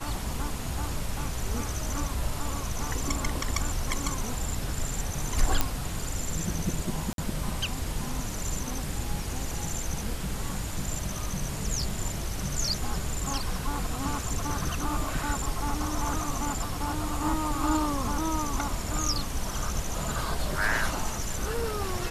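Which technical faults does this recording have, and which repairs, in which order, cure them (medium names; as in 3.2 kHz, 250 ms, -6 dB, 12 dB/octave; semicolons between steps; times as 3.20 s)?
5.61 s: pop -8 dBFS
7.13–7.18 s: dropout 52 ms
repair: de-click; interpolate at 7.13 s, 52 ms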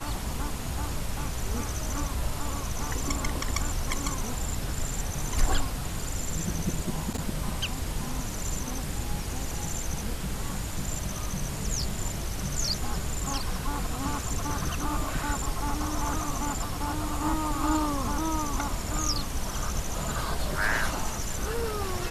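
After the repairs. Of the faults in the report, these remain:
nothing left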